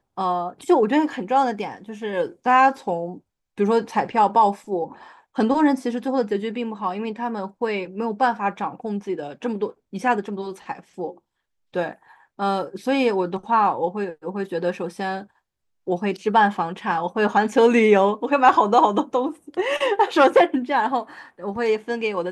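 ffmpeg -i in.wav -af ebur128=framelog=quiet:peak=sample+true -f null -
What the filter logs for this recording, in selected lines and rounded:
Integrated loudness:
  I:         -21.6 LUFS
  Threshold: -32.1 LUFS
Loudness range:
  LRA:         8.6 LU
  Threshold: -42.2 LUFS
  LRA low:   -27.0 LUFS
  LRA high:  -18.3 LUFS
Sample peak:
  Peak:       -4.3 dBFS
True peak:
  Peak:       -4.3 dBFS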